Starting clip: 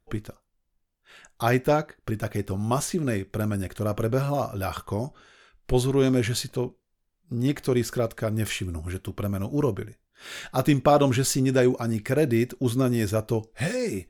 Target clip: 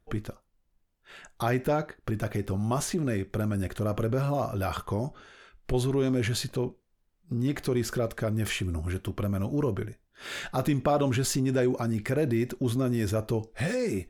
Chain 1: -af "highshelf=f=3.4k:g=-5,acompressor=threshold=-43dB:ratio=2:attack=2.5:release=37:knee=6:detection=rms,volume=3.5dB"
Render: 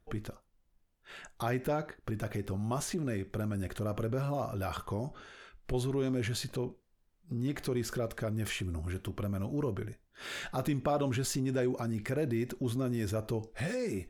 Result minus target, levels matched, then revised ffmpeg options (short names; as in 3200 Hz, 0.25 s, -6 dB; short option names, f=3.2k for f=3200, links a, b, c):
compressor: peak gain reduction +6 dB
-af "highshelf=f=3.4k:g=-5,acompressor=threshold=-31.5dB:ratio=2:attack=2.5:release=37:knee=6:detection=rms,volume=3.5dB"